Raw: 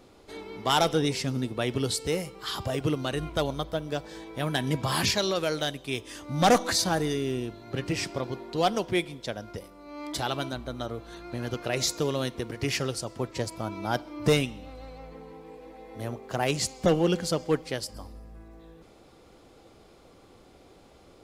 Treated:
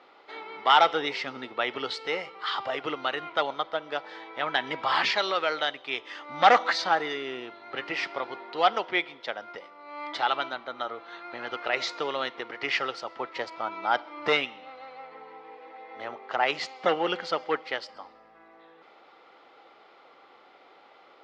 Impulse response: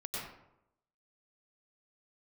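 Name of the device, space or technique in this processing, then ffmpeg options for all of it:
phone earpiece: -af "highpass=490,equalizer=f=840:t=q:w=4:g=7,equalizer=f=1.3k:t=q:w=4:g=9,equalizer=f=2k:t=q:w=4:g=8,equalizer=f=3k:t=q:w=4:g=3,lowpass=f=4.3k:w=0.5412,lowpass=f=4.3k:w=1.3066"

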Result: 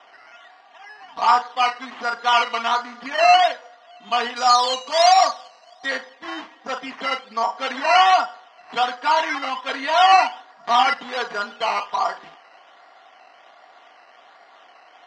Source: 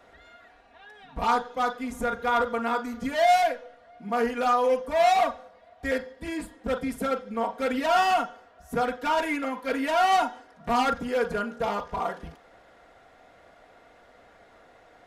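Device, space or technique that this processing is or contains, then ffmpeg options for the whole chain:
circuit-bent sampling toy: -filter_complex "[0:a]acrusher=samples=10:mix=1:aa=0.000001:lfo=1:lforange=6:lforate=1.3,highpass=440,equalizer=f=490:t=q:w=4:g=-8,equalizer=f=780:t=q:w=4:g=6,equalizer=f=1.1k:t=q:w=4:g=9,equalizer=f=1.9k:t=q:w=4:g=5,equalizer=f=3k:t=q:w=4:g=7,lowpass=f=5.3k:w=0.5412,lowpass=f=5.3k:w=1.3066,asettb=1/sr,asplit=3[a][b][c];[a]atrim=end=4.364[d];[b]atrim=start=4.36:end=5.86,asetpts=PTS-STARTPTS,afade=t=in:d=0.004:c=qsin,afade=t=out:st=1.496:d=0.004:c=qsin,highshelf=f=3.8k:t=q:w=1.5:g=8.5[e];[c]atrim=start=5.856[f];[d][e]acrossfade=d=0.004:c1=hsin:c2=qsin[g];[g][f]acrossfade=d=0.004:c1=qsin:c2=hsin,volume=3dB"

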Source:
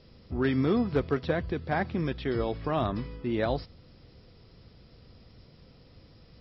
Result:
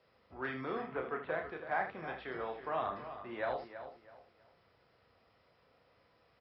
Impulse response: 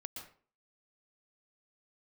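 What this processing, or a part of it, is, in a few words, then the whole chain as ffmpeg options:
slapback doubling: -filter_complex "[0:a]highpass=63,asettb=1/sr,asplit=3[a][b][c];[a]atrim=end=0.824[d];[b]atrim=start=0.82:end=1.3,asetpts=PTS-STARTPTS,afade=t=in:d=0.004:c=qsin,afade=t=out:st=0.476:d=0.004:c=qsin,lowpass=f=3k:w=0.5412,lowpass=f=3k:w=1.3066[e];[c]atrim=start=1.296[f];[d][e]acrossfade=d=0.004:c1=hsin:c2=qsin[g];[g][f]acrossfade=d=0.004:c1=qsin:c2=hsin,asplit=3[h][i][j];[i]adelay=31,volume=-5.5dB[k];[j]adelay=76,volume=-9dB[l];[h][k][l]amix=inputs=3:normalize=0,acrossover=split=560 2400:gain=0.1 1 0.141[m][n][o];[m][n][o]amix=inputs=3:normalize=0,asplit=2[p][q];[q]adelay=326,lowpass=f=4k:p=1,volume=-11dB,asplit=2[r][s];[s]adelay=326,lowpass=f=4k:p=1,volume=0.29,asplit=2[t][u];[u]adelay=326,lowpass=f=4k:p=1,volume=0.29[v];[p][r][t][v]amix=inputs=4:normalize=0,volume=-3.5dB"

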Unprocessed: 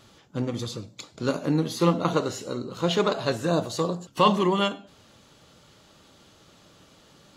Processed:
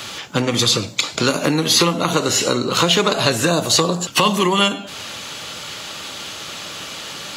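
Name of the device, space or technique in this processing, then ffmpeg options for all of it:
mastering chain: -filter_complex "[0:a]highpass=59,equalizer=f=2.5k:t=o:w=0.64:g=4,acrossover=split=360|7100[a][b][c];[a]acompressor=threshold=-30dB:ratio=4[d];[b]acompressor=threshold=-36dB:ratio=4[e];[c]acompressor=threshold=-50dB:ratio=4[f];[d][e][f]amix=inputs=3:normalize=0,acompressor=threshold=-34dB:ratio=2,tiltshelf=f=640:g=-6.5,alimiter=level_in=21dB:limit=-1dB:release=50:level=0:latency=1,volume=-1dB"

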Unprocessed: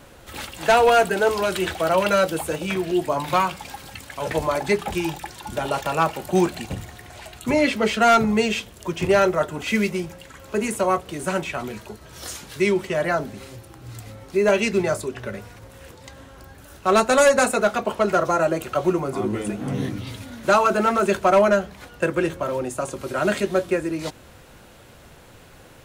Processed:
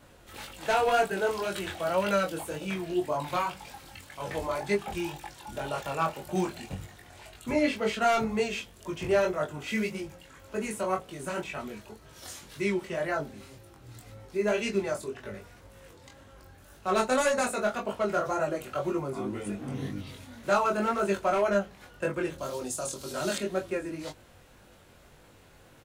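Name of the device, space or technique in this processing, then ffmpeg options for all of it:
double-tracked vocal: -filter_complex "[0:a]asplit=2[a][b];[b]adelay=20,volume=-11.5dB[c];[a][c]amix=inputs=2:normalize=0,flanger=delay=20:depth=3.6:speed=1.9,asettb=1/sr,asplit=3[d][e][f];[d]atrim=end=22.384[g];[e]atrim=start=22.38:end=23.38,asetpts=PTS-STARTPTS,afade=t=in:d=0.004:c=qsin,afade=t=out:st=0.996:d=0.004:c=qsin,highshelf=f=3.1k:t=q:w=1.5:g=10[h];[f]atrim=start=23.376[i];[g][h]acrossfade=d=0.004:c1=hsin:c2=qsin[j];[j][i]acrossfade=d=0.004:c1=qsin:c2=hsin,volume=-6dB"

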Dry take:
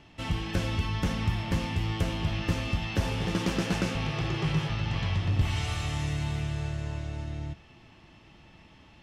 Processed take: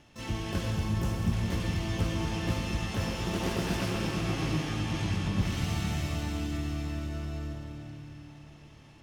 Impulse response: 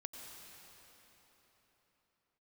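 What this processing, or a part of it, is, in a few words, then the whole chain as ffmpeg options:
shimmer-style reverb: -filter_complex "[0:a]asettb=1/sr,asplit=3[a][b][c];[a]atrim=end=0.714[d];[b]atrim=start=0.71:end=1.33,asetpts=PTS-STARTPTS,afade=t=in:d=0.004:c=qsin,afade=t=out:st=0.616:d=0.004:c=qsin,equalizer=f=125:t=o:w=1:g=8,equalizer=f=250:t=o:w=1:g=-10,equalizer=f=500:t=o:w=1:g=4,equalizer=f=2k:t=o:w=1:g=-10,equalizer=f=4k:t=o:w=1:g=-5,equalizer=f=8k:t=o:w=1:g=6[e];[c]atrim=start=1.326[f];[d][e]acrossfade=d=0.004:c1=hsin:c2=qsin[g];[g][f]acrossfade=d=0.004:c1=qsin:c2=hsin,asplit=2[h][i];[i]asetrate=88200,aresample=44100,atempo=0.5,volume=-5dB[j];[h][j]amix=inputs=2:normalize=0[k];[1:a]atrim=start_sample=2205[l];[k][l]afir=irnorm=-1:irlink=0"

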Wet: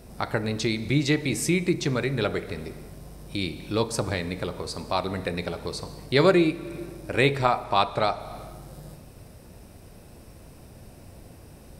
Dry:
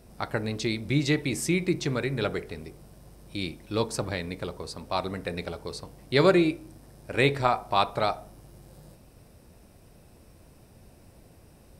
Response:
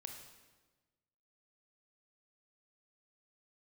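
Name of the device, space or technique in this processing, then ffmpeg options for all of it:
ducked reverb: -filter_complex "[0:a]asettb=1/sr,asplit=3[a][b][c];[a]atrim=end=7.644[d];[b]atrim=start=7.64:end=8.2,asetpts=PTS-STARTPTS,afade=t=in:d=0.004:c=qsin,afade=t=out:st=0.556:d=0.004:c=qsin,lowpass=10k[e];[c]atrim=start=8.196[f];[d][e]acrossfade=d=0.004:c1=hsin:c2=qsin[g];[g][f]acrossfade=d=0.004:c1=qsin:c2=hsin,asplit=3[h][i][j];[1:a]atrim=start_sample=2205[k];[i][k]afir=irnorm=-1:irlink=0[l];[j]apad=whole_len=520145[m];[l][m]sidechaincompress=threshold=-39dB:ratio=3:attack=38:release=234,volume=5.5dB[n];[h][n]amix=inputs=2:normalize=0"

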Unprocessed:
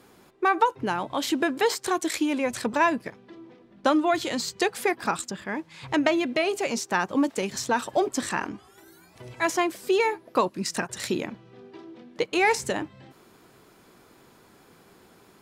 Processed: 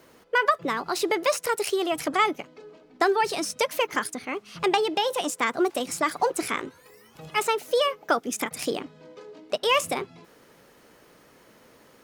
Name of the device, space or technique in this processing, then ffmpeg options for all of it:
nightcore: -af "asetrate=56448,aresample=44100"

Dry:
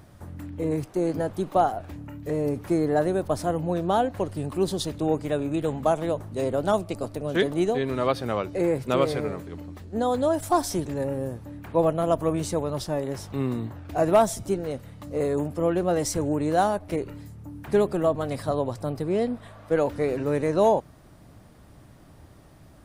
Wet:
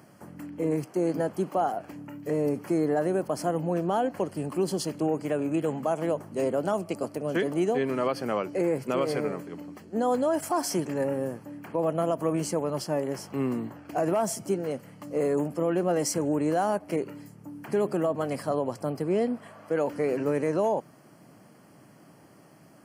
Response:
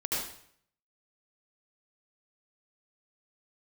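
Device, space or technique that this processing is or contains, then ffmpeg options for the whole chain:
PA system with an anti-feedback notch: -filter_complex "[0:a]asettb=1/sr,asplit=3[a][b][c];[a]atrim=end=10.244[d];[b]atrim=start=10.24:end=11.43,asetpts=PTS-STARTPTS,afade=t=in:d=0.004:c=qsin,afade=t=out:st=1.186:d=0.004:c=qsin,equalizer=f=1.7k:t=o:w=2.2:g=3.5[e];[c]atrim=start=11.426[f];[d][e]acrossfade=d=0.004:c1=hsin:c2=qsin[g];[g][f]acrossfade=d=0.004:c1=qsin:c2=hsin,highpass=f=150:w=0.5412,highpass=f=150:w=1.3066,asuperstop=centerf=3700:order=4:qfactor=4.2,alimiter=limit=-17dB:level=0:latency=1:release=60"

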